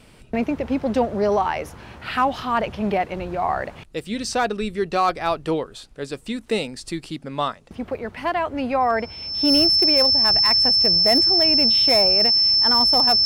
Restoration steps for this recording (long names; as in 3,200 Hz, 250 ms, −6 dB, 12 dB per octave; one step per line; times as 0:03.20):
clipped peaks rebuilt −10.5 dBFS
notch filter 5,300 Hz, Q 30